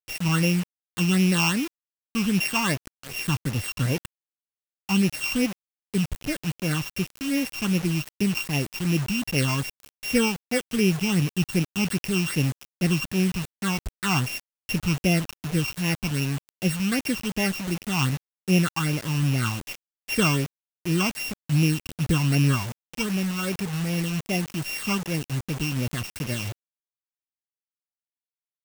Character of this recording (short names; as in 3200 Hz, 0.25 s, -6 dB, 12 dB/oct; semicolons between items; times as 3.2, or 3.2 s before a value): a buzz of ramps at a fixed pitch in blocks of 16 samples; phasing stages 8, 2.6 Hz, lowest notch 510–1300 Hz; a quantiser's noise floor 6-bit, dither none